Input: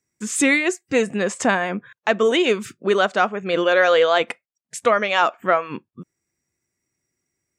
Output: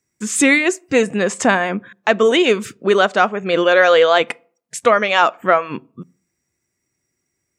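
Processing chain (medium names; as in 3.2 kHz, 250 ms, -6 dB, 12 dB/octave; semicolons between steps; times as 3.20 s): on a send: peaking EQ 2 kHz -12.5 dB 2.6 oct + reverberation RT60 0.50 s, pre-delay 43 ms, DRR 30 dB; on the sum: trim +4 dB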